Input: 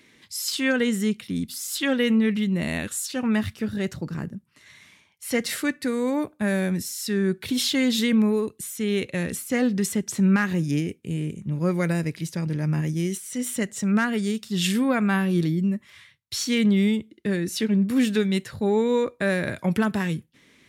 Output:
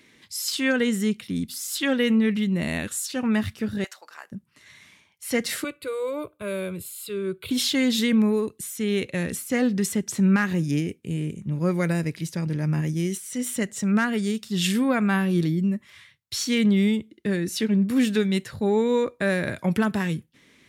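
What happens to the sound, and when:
0:03.84–0:04.32: high-pass filter 740 Hz 24 dB per octave
0:05.64–0:07.51: phaser with its sweep stopped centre 1,200 Hz, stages 8

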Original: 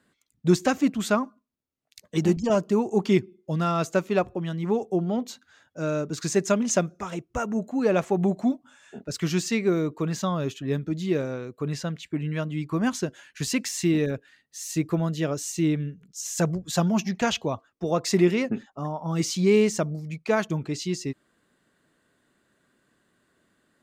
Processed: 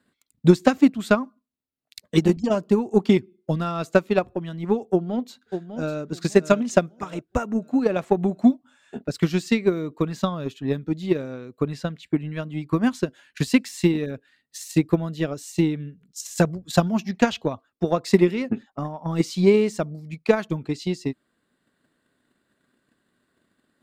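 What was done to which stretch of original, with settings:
0:04.86–0:06.00: delay throw 600 ms, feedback 35%, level −9.5 dB
0:19.09–0:19.77: dynamic equaliser 600 Hz, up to +4 dB, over −31 dBFS, Q 0.7
whole clip: thirty-one-band graphic EQ 250 Hz +4 dB, 4,000 Hz +3 dB, 6,300 Hz −6 dB; transient designer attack +11 dB, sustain −1 dB; level −3.5 dB

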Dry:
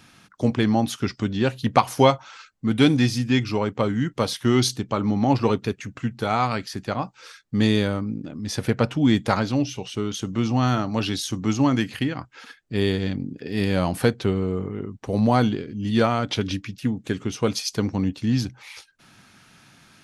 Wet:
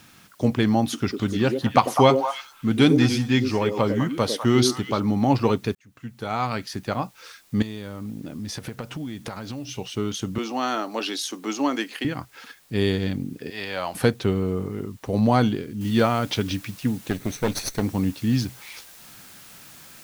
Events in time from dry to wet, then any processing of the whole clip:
0:00.83–0:05.00: echo through a band-pass that steps 101 ms, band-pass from 370 Hz, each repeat 1.4 octaves, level −2 dB
0:05.75–0:06.73: fade in
0:07.62–0:09.72: downward compressor 20 to 1, threshold −28 dBFS
0:10.38–0:12.05: high-pass filter 300 Hz 24 dB per octave
0:13.50–0:13.95: three-way crossover with the lows and the highs turned down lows −19 dB, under 540 Hz, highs −13 dB, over 5,800 Hz
0:15.81: noise floor change −58 dB −47 dB
0:17.10–0:17.83: lower of the sound and its delayed copy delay 0.51 ms

